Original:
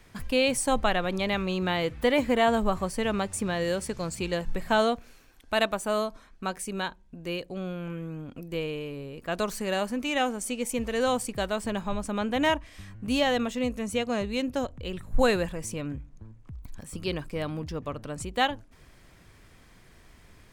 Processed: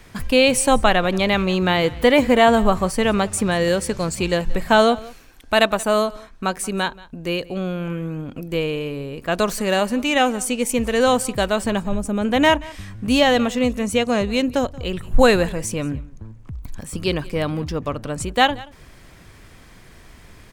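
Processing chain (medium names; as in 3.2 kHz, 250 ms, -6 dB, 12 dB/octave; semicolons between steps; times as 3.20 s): 11.80–12.25 s: ten-band graphic EQ 1 kHz -9 dB, 2 kHz -5 dB, 4 kHz -9 dB; on a send: delay 180 ms -21.5 dB; on the sum: trim +9 dB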